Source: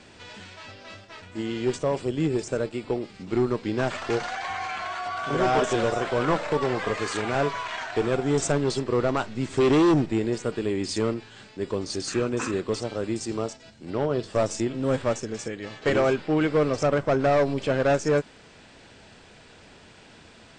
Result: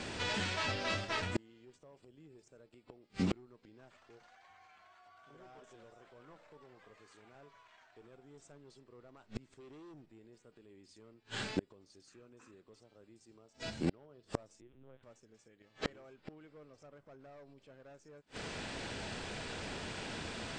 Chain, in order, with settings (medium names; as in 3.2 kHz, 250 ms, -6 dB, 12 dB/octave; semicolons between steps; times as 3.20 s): peak limiter -19.5 dBFS, peak gain reduction 5 dB; inverted gate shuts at -27 dBFS, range -38 dB; 14.61–15.03 s: LPC vocoder at 8 kHz pitch kept; trim +7.5 dB